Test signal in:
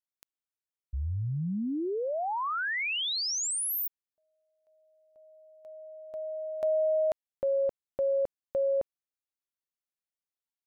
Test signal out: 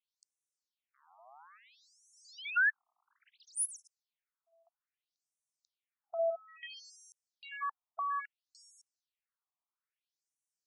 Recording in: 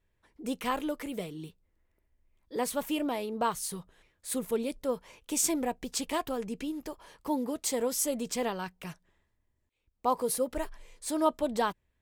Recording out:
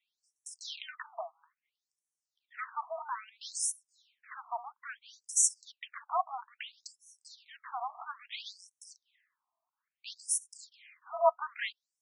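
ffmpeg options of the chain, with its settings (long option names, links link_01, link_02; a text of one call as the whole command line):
ffmpeg -i in.wav -af "aeval=exprs='clip(val(0),-1,0.0188)':channel_layout=same,afreqshift=37,afftfilt=real='re*between(b*sr/1024,890*pow(7900/890,0.5+0.5*sin(2*PI*0.6*pts/sr))/1.41,890*pow(7900/890,0.5+0.5*sin(2*PI*0.6*pts/sr))*1.41)':imag='im*between(b*sr/1024,890*pow(7900/890,0.5+0.5*sin(2*PI*0.6*pts/sr))/1.41,890*pow(7900/890,0.5+0.5*sin(2*PI*0.6*pts/sr))*1.41)':win_size=1024:overlap=0.75,volume=7dB" out.wav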